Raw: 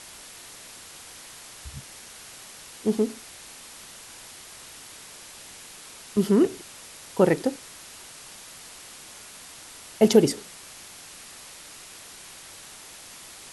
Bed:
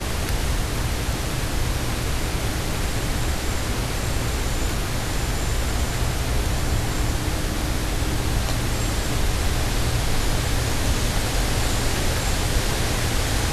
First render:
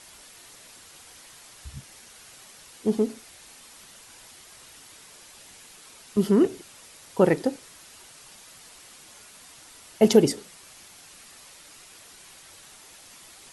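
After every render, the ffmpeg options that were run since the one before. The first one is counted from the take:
-af "afftdn=nr=6:nf=-45"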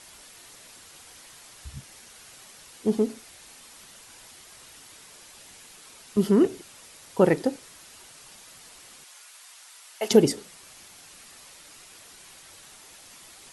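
-filter_complex "[0:a]asettb=1/sr,asplit=3[a][b][c];[a]atrim=end=9.044[d];[b]atrim=start=9.04:end=10.11,asetpts=PTS-STARTPTS,afade=t=in:d=0.004:c=qsin,afade=t=out:st=1.066:d=0.004:c=qsin,highpass=880[e];[c]atrim=start=10.106[f];[d][e]acrossfade=d=0.004:c1=hsin:c2=qsin[g];[g][f]acrossfade=d=0.004:c1=qsin:c2=hsin"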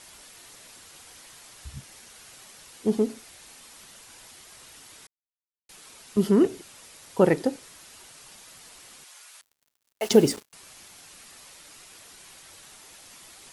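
-filter_complex "[0:a]asettb=1/sr,asplit=3[a][b][c];[a]atrim=end=9.414[d];[b]atrim=start=9.41:end=10.53,asetpts=PTS-STARTPTS,afade=t=in:d=0.004:c=qsin,afade=t=out:st=1.116:d=0.004:c=qsin,acrusher=bits=5:mix=0:aa=0.5[e];[c]atrim=start=10.526[f];[d][e]acrossfade=d=0.004:c1=hsin:c2=qsin[g];[g][f]acrossfade=d=0.004:c1=qsin:c2=hsin,asplit=3[h][i][j];[h]atrim=end=5.07,asetpts=PTS-STARTPTS,afade=t=out:st=5.066:d=0.004:c=hsin[k];[i]atrim=start=5.07:end=5.69,asetpts=PTS-STARTPTS,volume=0[l];[j]atrim=start=5.69,asetpts=PTS-STARTPTS,afade=t=in:d=0.004:c=hsin[m];[k][l][m]concat=n=3:v=0:a=1"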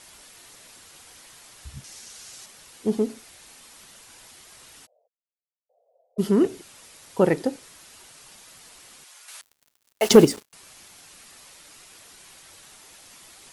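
-filter_complex "[0:a]asettb=1/sr,asplit=3[a][b][c];[a]atrim=end=1.844[d];[b]atrim=start=1.84:end=2.46,asetpts=PTS-STARTPTS,afade=t=in:d=0.004:c=qsin,afade=t=out:st=0.616:d=0.004:c=qsin,equalizer=f=6k:w=0.92:g=8.5[e];[c]atrim=start=2.456[f];[d][e]acrossfade=d=0.004:c1=hsin:c2=qsin[g];[g][f]acrossfade=d=0.004:c1=qsin:c2=hsin,asplit=3[h][i][j];[h]afade=t=out:st=4.85:d=0.02[k];[i]asuperpass=centerf=590:order=8:qfactor=2.5,afade=t=in:st=4.85:d=0.02,afade=t=out:st=6.18:d=0.02[l];[j]afade=t=in:st=6.18:d=0.02[m];[k][l][m]amix=inputs=3:normalize=0,asettb=1/sr,asplit=3[n][o][p];[n]atrim=end=9.284[q];[o]atrim=start=9.28:end=10.25,asetpts=PTS-STARTPTS,afade=t=in:d=0.004:c=qsin,afade=t=out:st=0.966:d=0.004:c=qsin,acontrast=85[r];[p]atrim=start=10.246[s];[q][r]acrossfade=d=0.004:c1=hsin:c2=qsin[t];[t][s]acrossfade=d=0.004:c1=qsin:c2=hsin"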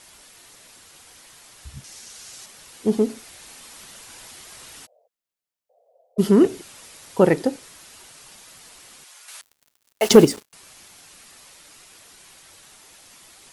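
-af "dynaudnorm=f=600:g=11:m=11.5dB"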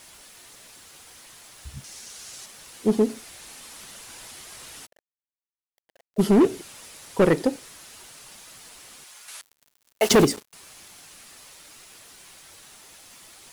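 -af "asoftclip=type=hard:threshold=-12dB,acrusher=bits=8:mix=0:aa=0.000001"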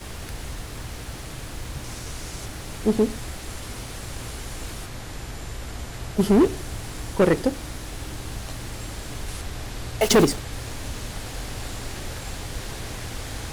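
-filter_complex "[1:a]volume=-11dB[a];[0:a][a]amix=inputs=2:normalize=0"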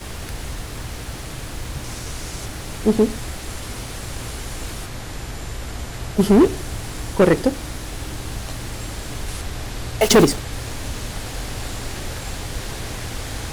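-af "volume=4dB"

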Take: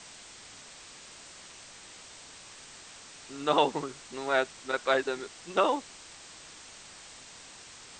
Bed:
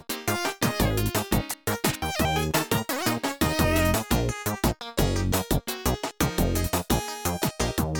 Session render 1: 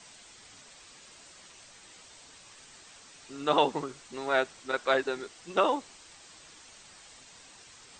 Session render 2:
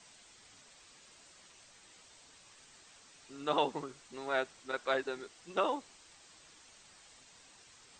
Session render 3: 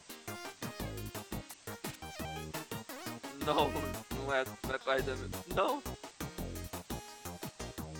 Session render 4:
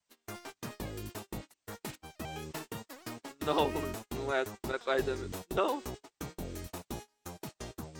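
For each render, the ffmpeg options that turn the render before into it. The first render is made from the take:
-af "afftdn=nr=6:nf=-50"
-af "volume=-6.5dB"
-filter_complex "[1:a]volume=-17.5dB[a];[0:a][a]amix=inputs=2:normalize=0"
-af "agate=range=-27dB:threshold=-44dB:ratio=16:detection=peak,adynamicequalizer=threshold=0.00355:dfrequency=370:dqfactor=2.3:tfrequency=370:tqfactor=2.3:attack=5:release=100:ratio=0.375:range=3:mode=boostabove:tftype=bell"

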